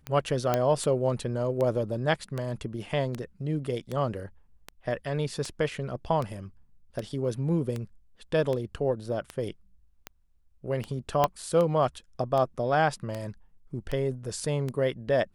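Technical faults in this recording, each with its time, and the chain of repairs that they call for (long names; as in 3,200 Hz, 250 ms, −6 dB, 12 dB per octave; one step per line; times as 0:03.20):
scratch tick 78 rpm −19 dBFS
0:00.54: click −11 dBFS
0:11.24: click −9 dBFS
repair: click removal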